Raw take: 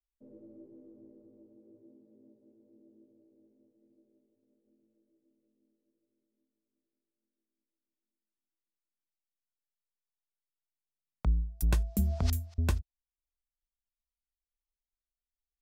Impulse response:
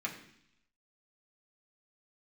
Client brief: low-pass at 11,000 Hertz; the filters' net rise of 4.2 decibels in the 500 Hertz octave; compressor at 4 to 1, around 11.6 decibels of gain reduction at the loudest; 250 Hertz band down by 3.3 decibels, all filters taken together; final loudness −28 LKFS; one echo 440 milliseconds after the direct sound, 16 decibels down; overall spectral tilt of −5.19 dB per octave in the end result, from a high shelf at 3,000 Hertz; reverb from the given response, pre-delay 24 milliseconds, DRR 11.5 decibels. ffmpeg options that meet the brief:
-filter_complex "[0:a]lowpass=11000,equalizer=frequency=250:width_type=o:gain=-6.5,equalizer=frequency=500:width_type=o:gain=7.5,highshelf=frequency=3000:gain=3,acompressor=threshold=-37dB:ratio=4,aecho=1:1:440:0.158,asplit=2[link_01][link_02];[1:a]atrim=start_sample=2205,adelay=24[link_03];[link_02][link_03]afir=irnorm=-1:irlink=0,volume=-14.5dB[link_04];[link_01][link_04]amix=inputs=2:normalize=0,volume=17dB"

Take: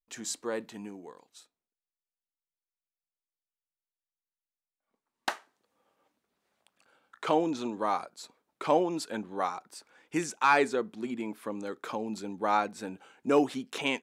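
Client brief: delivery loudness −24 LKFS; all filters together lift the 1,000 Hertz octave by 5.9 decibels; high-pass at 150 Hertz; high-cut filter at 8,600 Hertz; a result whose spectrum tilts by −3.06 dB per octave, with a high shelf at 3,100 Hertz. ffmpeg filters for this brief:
ffmpeg -i in.wav -af "highpass=150,lowpass=8600,equalizer=frequency=1000:width_type=o:gain=7,highshelf=frequency=3100:gain=5,volume=3.5dB" out.wav

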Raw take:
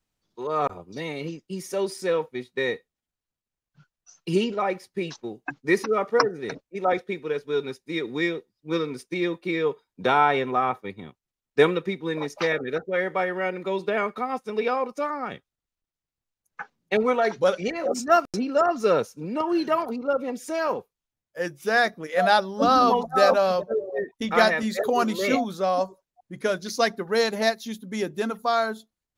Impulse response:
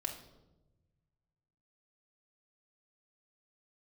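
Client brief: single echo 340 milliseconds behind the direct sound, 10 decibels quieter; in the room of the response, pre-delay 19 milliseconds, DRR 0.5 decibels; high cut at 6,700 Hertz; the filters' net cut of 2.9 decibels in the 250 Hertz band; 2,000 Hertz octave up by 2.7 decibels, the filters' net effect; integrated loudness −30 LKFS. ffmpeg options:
-filter_complex "[0:a]lowpass=6700,equalizer=frequency=250:width_type=o:gain=-4,equalizer=frequency=2000:width_type=o:gain=3.5,aecho=1:1:340:0.316,asplit=2[link_01][link_02];[1:a]atrim=start_sample=2205,adelay=19[link_03];[link_02][link_03]afir=irnorm=-1:irlink=0,volume=-1dB[link_04];[link_01][link_04]amix=inputs=2:normalize=0,volume=-8.5dB"

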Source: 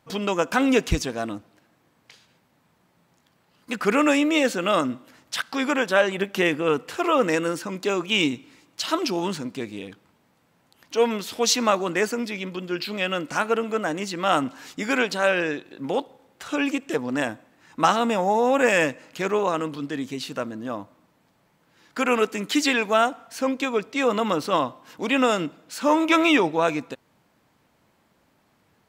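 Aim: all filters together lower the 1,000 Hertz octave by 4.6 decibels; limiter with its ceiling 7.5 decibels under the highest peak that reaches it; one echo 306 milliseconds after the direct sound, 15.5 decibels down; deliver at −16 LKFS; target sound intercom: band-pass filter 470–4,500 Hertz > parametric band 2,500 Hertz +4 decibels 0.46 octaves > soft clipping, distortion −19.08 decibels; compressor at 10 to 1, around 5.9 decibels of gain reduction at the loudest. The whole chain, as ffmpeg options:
ffmpeg -i in.wav -af "equalizer=frequency=1000:width_type=o:gain=-6,acompressor=threshold=-23dB:ratio=10,alimiter=limit=-20.5dB:level=0:latency=1,highpass=470,lowpass=4500,equalizer=frequency=2500:width_type=o:width=0.46:gain=4,aecho=1:1:306:0.168,asoftclip=threshold=-23dB,volume=18.5dB" out.wav

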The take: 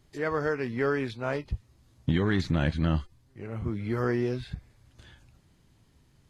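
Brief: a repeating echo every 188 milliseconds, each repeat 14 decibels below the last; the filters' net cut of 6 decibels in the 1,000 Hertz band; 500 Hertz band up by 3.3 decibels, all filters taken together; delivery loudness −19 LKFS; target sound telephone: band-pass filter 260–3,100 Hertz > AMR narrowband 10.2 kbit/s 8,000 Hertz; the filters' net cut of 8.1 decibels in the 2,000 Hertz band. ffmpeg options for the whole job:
ffmpeg -i in.wav -af "highpass=260,lowpass=3100,equalizer=frequency=500:width_type=o:gain=6.5,equalizer=frequency=1000:width_type=o:gain=-7.5,equalizer=frequency=2000:width_type=o:gain=-7.5,aecho=1:1:188|376:0.2|0.0399,volume=11.5dB" -ar 8000 -c:a libopencore_amrnb -b:a 10200 out.amr

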